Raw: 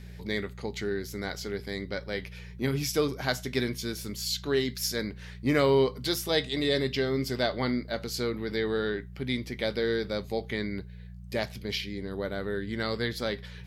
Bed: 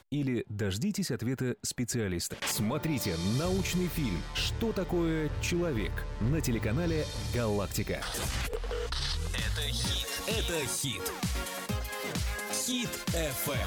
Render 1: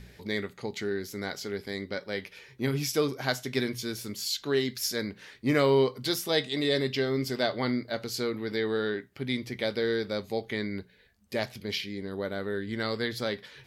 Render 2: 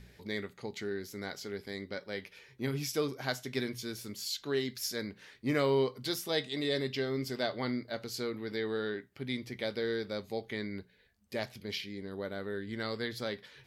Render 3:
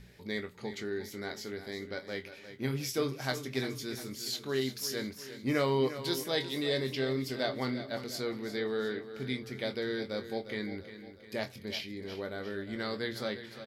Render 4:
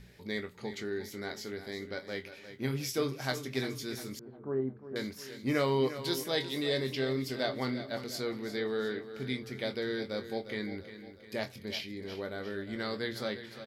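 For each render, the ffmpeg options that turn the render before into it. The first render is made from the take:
-af "bandreject=f=60:t=h:w=4,bandreject=f=120:t=h:w=4,bandreject=f=180:t=h:w=4"
-af "volume=-5.5dB"
-filter_complex "[0:a]asplit=2[a][b];[b]adelay=23,volume=-9dB[c];[a][c]amix=inputs=2:normalize=0,aecho=1:1:353|706|1059|1412|1765:0.251|0.128|0.0653|0.0333|0.017"
-filter_complex "[0:a]asettb=1/sr,asplit=3[a][b][c];[a]atrim=end=4.194[d];[b]atrim=start=4.19:end=4.96,asetpts=PTS-STARTPTS,afade=t=in:d=0.004:c=qsin,afade=t=out:st=0.766:d=0.004:c=qsin,lowpass=f=1.1k:w=0.5412,lowpass=f=1.1k:w=1.3066[e];[c]atrim=start=4.956[f];[d][e]acrossfade=d=0.004:c1=hsin:c2=qsin[g];[g][f]acrossfade=d=0.004:c1=qsin:c2=hsin"

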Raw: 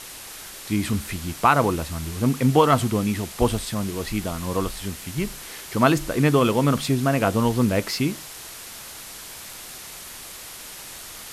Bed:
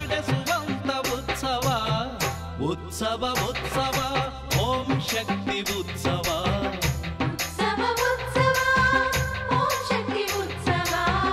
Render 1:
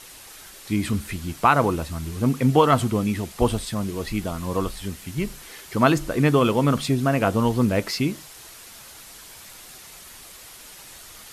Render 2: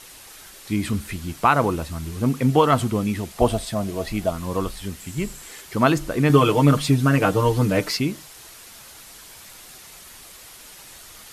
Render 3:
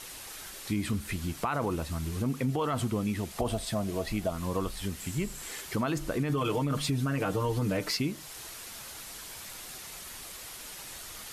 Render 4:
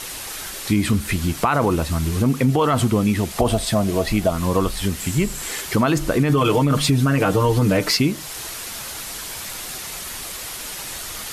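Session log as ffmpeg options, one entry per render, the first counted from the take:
-af "afftdn=nr=6:nf=-39"
-filter_complex "[0:a]asettb=1/sr,asplit=3[a][b][c];[a]atrim=end=3.364[d];[b]atrim=start=3.36:end=4.3,asetpts=PTS-STARTPTS,afade=t=in:d=0.004:c=qsin,afade=t=out:st=0.936:d=0.004:c=qsin,equalizer=f=660:w=4.8:g=14[e];[c]atrim=start=4.296[f];[d][e]acrossfade=d=0.004:c1=hsin:c2=qsin[g];[g][f]acrossfade=d=0.004:c1=qsin:c2=hsin,asettb=1/sr,asplit=3[h][i][j];[h]atrim=end=5.004[k];[i]atrim=start=5:end=5.62,asetpts=PTS-STARTPTS,afade=t=in:d=0.004:c=qsin,afade=t=out:st=0.616:d=0.004:c=qsin,equalizer=f=7.6k:t=o:w=0.21:g=10.5[l];[j]atrim=start=5.616[m];[k][l]acrossfade=d=0.004:c1=hsin:c2=qsin[n];[n][m]acrossfade=d=0.004:c1=qsin:c2=hsin,asettb=1/sr,asplit=3[o][p][q];[o]atrim=end=6.294[r];[p]atrim=start=6.29:end=7.97,asetpts=PTS-STARTPTS,afade=t=in:d=0.004:c=qsin,afade=t=out:st=1.676:d=0.004:c=qsin,aecho=1:1:6.6:0.99,atrim=end_sample=74088[s];[q]atrim=start=7.966[t];[r][s]acrossfade=d=0.004:c1=hsin:c2=qsin[u];[u][t]acrossfade=d=0.004:c1=qsin:c2=hsin"
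-af "alimiter=limit=-13.5dB:level=0:latency=1:release=30,acompressor=threshold=-32dB:ratio=2"
-af "volume=12dB"

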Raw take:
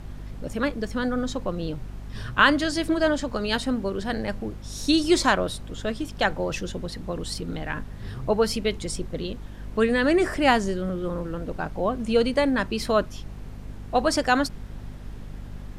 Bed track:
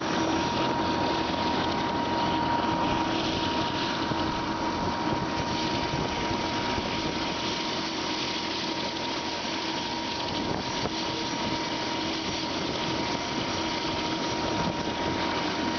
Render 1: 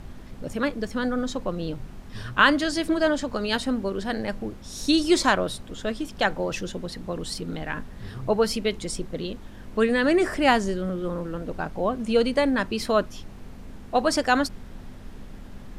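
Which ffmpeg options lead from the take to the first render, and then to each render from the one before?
-af "bandreject=f=50:t=h:w=4,bandreject=f=100:t=h:w=4,bandreject=f=150:t=h:w=4"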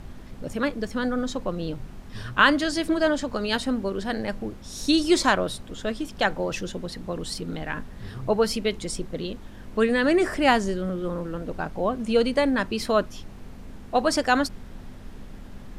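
-af anull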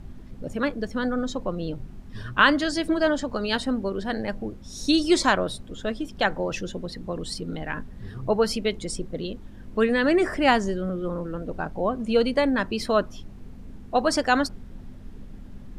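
-af "afftdn=nr=8:nf=-42"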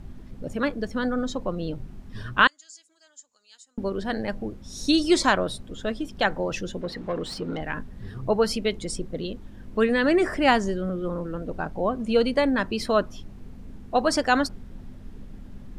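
-filter_complex "[0:a]asettb=1/sr,asplit=3[a][b][c];[a]atrim=end=2.474[d];[b]atrim=start=2.47:end=3.78,asetpts=PTS-STARTPTS,afade=t=in:d=0.004:c=qsin,afade=t=out:st=1.306:d=0.004:c=qsin,bandpass=f=7k:t=q:w=10[e];[c]atrim=start=3.776[f];[d][e]acrossfade=d=0.004:c1=hsin:c2=qsin[g];[g][f]acrossfade=d=0.004:c1=qsin:c2=hsin,asettb=1/sr,asplit=3[h][i][j];[h]atrim=end=6.814[k];[i]atrim=start=6.81:end=7.61,asetpts=PTS-STARTPTS,afade=t=in:d=0.004:c=qsin,afade=t=out:st=0.796:d=0.004:c=qsin,asplit=2[l][m];[m]highpass=f=720:p=1,volume=17dB,asoftclip=type=tanh:threshold=-18dB[n];[l][n]amix=inputs=2:normalize=0,lowpass=f=1.5k:p=1,volume=-6dB[o];[j]atrim=start=7.606[p];[k][o]acrossfade=d=0.004:c1=hsin:c2=qsin[q];[q][p]acrossfade=d=0.004:c1=qsin:c2=hsin"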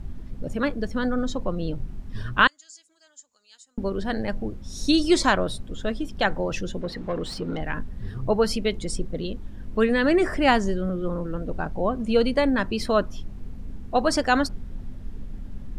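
-af "lowshelf=f=100:g=8"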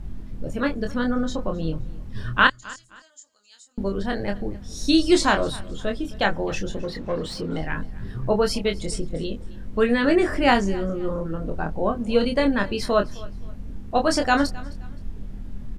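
-filter_complex "[0:a]asplit=2[a][b];[b]adelay=25,volume=-5dB[c];[a][c]amix=inputs=2:normalize=0,aecho=1:1:262|524:0.0891|0.0267"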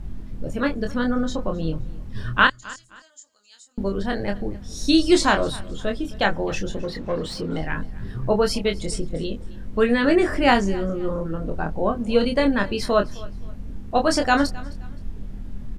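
-af "volume=1dB,alimiter=limit=-3dB:level=0:latency=1"

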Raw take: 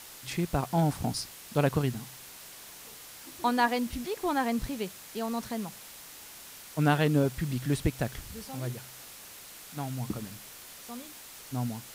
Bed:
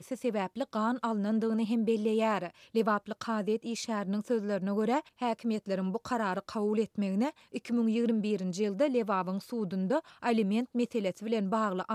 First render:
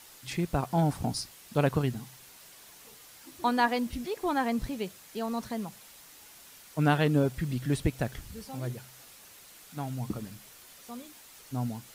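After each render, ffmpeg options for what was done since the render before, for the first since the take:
-af "afftdn=nr=6:nf=-48"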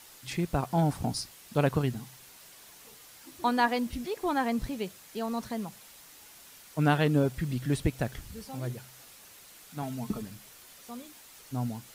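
-filter_complex "[0:a]asettb=1/sr,asplit=3[a][b][c];[a]atrim=end=9.824[d];[b]atrim=start=9.82:end=10.22,asetpts=PTS-STARTPTS,afade=t=in:d=0.004:c=qsin,afade=t=out:st=0.396:d=0.004:c=qsin,aecho=1:1:4.6:0.65,atrim=end_sample=17640[e];[c]atrim=start=10.216[f];[d][e]acrossfade=d=0.004:c1=hsin:c2=qsin[g];[g][f]acrossfade=d=0.004:c1=qsin:c2=hsin"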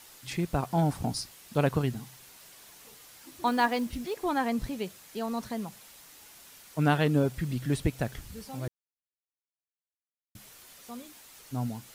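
-filter_complex "[0:a]asettb=1/sr,asplit=3[a][b][c];[a]atrim=end=3.474[d];[b]atrim=start=3.47:end=4.17,asetpts=PTS-STARTPTS,afade=t=in:d=0.004:c=qsin,afade=t=out:st=0.696:d=0.004:c=qsin,acrusher=bits=7:mode=log:mix=0:aa=0.000001[e];[c]atrim=start=4.166[f];[d][e]acrossfade=d=0.004:c1=hsin:c2=qsin[g];[g][f]acrossfade=d=0.004:c1=qsin:c2=hsin,asplit=3[h][i][j];[h]atrim=end=8.68,asetpts=PTS-STARTPTS,afade=t=out:st=8.676:d=0.004:c=hsin[k];[i]atrim=start=8.68:end=10.35,asetpts=PTS-STARTPTS,volume=0[l];[j]atrim=start=10.35,asetpts=PTS-STARTPTS,afade=t=in:d=0.004:c=hsin[m];[k][l][m]concat=n=3:v=0:a=1"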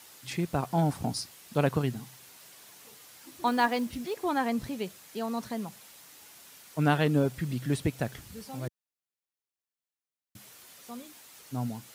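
-af "highpass=91"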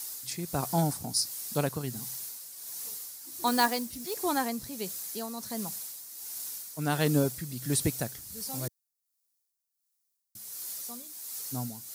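-af "tremolo=f=1.4:d=0.57,aexciter=amount=4.1:drive=6.1:freq=4.2k"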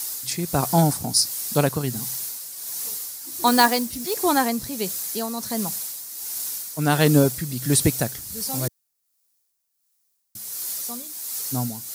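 -af "volume=9dB,alimiter=limit=-2dB:level=0:latency=1"

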